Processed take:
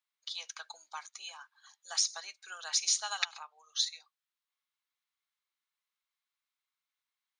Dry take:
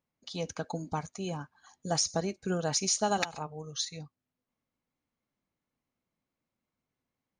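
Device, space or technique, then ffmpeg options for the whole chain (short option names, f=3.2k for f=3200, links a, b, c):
headphones lying on a table: -filter_complex "[0:a]highpass=f=1.1k:w=0.5412,highpass=f=1.1k:w=1.3066,equalizer=f=3.7k:t=o:w=0.52:g=7,asettb=1/sr,asplit=3[a][b][c];[a]atrim=end=3.204[d];[b]atrim=start=3.2:end=3.72,asetpts=PTS-STARTPTS,afade=t=in:d=0.004:c=qsin,afade=t=out:st=0.516:d=0.004:c=qsin,lowpass=6.7k[e];[c]atrim=start=3.716[f];[d][e]acrossfade=d=0.004:c1=hsin:c2=qsin[g];[g][f]acrossfade=d=0.004:c1=qsin:c2=hsin,volume=-1dB"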